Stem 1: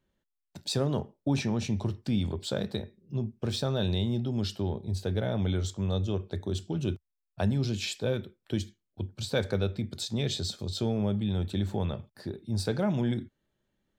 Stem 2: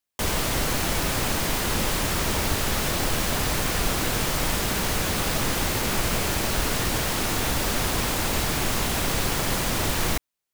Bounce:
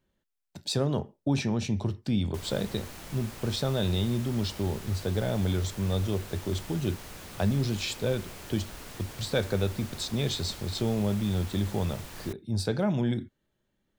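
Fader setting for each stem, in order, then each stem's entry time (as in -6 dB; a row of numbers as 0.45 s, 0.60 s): +1.0 dB, -19.0 dB; 0.00 s, 2.15 s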